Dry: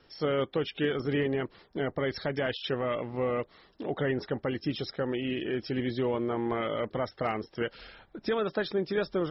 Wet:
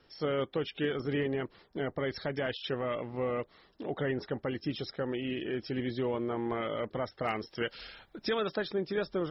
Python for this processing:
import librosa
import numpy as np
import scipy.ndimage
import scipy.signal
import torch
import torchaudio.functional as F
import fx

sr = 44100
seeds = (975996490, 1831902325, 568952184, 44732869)

y = fx.high_shelf(x, sr, hz=2400.0, db=10.0, at=(7.27, 8.56))
y = y * 10.0 ** (-3.0 / 20.0)